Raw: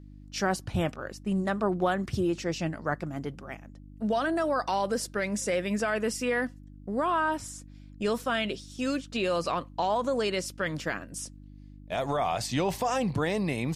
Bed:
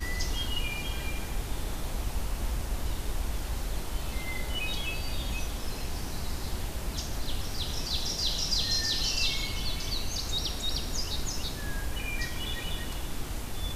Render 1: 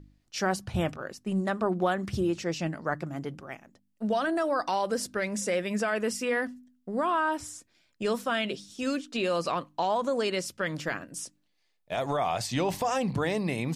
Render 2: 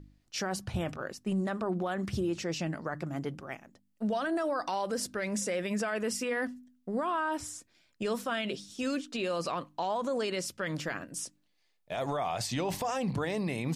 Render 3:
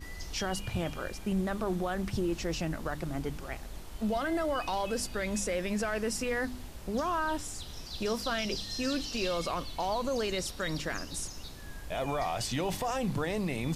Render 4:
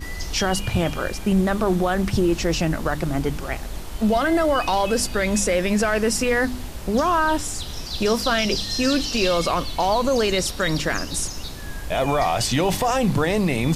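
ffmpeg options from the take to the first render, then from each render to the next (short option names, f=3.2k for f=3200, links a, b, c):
-af "bandreject=f=50:t=h:w=4,bandreject=f=100:t=h:w=4,bandreject=f=150:t=h:w=4,bandreject=f=200:t=h:w=4,bandreject=f=250:t=h:w=4,bandreject=f=300:t=h:w=4"
-af "alimiter=limit=-24dB:level=0:latency=1:release=42"
-filter_complex "[1:a]volume=-10.5dB[a];[0:a][a]amix=inputs=2:normalize=0"
-af "volume=11.5dB"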